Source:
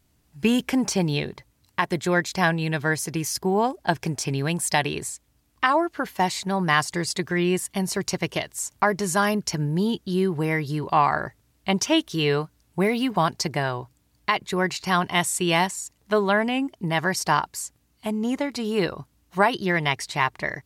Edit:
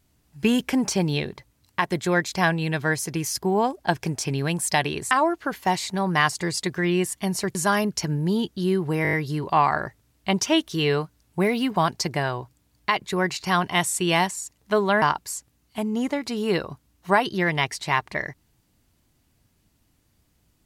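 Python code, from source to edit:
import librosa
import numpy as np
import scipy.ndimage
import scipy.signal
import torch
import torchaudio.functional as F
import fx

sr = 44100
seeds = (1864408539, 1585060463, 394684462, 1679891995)

y = fx.edit(x, sr, fx.cut(start_s=5.11, length_s=0.53),
    fx.cut(start_s=8.08, length_s=0.97),
    fx.stutter(start_s=10.53, slice_s=0.02, count=6),
    fx.cut(start_s=16.42, length_s=0.88), tone=tone)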